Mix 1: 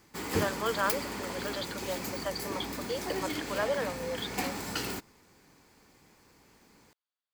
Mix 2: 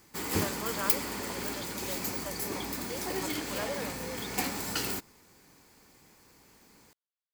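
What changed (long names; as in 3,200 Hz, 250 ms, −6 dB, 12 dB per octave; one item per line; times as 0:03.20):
speech −7.0 dB
background: add high-shelf EQ 7,000 Hz +8 dB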